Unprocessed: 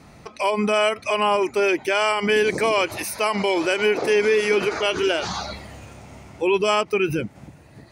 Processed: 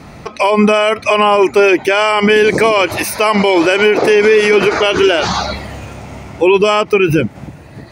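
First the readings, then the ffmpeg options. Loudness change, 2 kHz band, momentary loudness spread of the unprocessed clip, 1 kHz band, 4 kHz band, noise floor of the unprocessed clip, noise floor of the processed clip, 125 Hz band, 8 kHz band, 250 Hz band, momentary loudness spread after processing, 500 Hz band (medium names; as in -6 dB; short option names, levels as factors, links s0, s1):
+9.5 dB, +9.0 dB, 8 LU, +9.5 dB, +8.5 dB, -48 dBFS, -36 dBFS, +12.0 dB, +7.0 dB, +11.5 dB, 13 LU, +10.0 dB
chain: -af "equalizer=f=9200:w=0.61:g=-5,alimiter=level_in=4.73:limit=0.891:release=50:level=0:latency=1,volume=0.891"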